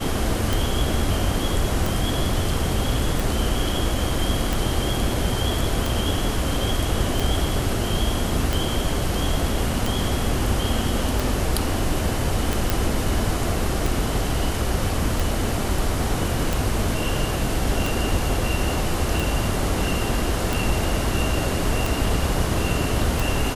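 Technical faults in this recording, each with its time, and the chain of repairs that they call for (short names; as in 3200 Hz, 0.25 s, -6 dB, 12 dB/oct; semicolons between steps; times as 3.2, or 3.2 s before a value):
tick 45 rpm
12.7 pop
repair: de-click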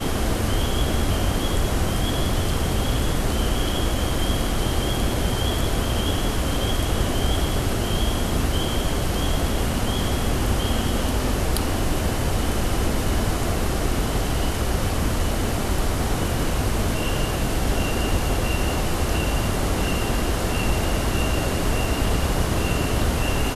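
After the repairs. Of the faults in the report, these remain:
none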